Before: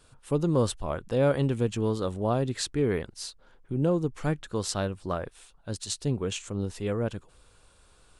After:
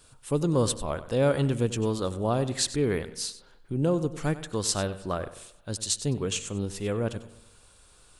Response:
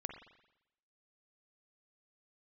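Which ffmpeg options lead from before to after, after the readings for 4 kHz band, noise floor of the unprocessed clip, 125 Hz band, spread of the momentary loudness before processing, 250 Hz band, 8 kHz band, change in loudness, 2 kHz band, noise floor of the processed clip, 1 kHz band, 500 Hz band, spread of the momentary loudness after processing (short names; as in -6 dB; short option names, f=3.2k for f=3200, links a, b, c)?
+4.0 dB, -60 dBFS, 0.0 dB, 12 LU, 0.0 dB, +6.5 dB, +1.0 dB, +1.5 dB, -57 dBFS, +0.5 dB, +0.5 dB, 9 LU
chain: -filter_complex "[0:a]highshelf=f=4.2k:g=8,asplit=2[a][b];[1:a]atrim=start_sample=2205,adelay=95[c];[b][c]afir=irnorm=-1:irlink=0,volume=-11.5dB[d];[a][d]amix=inputs=2:normalize=0"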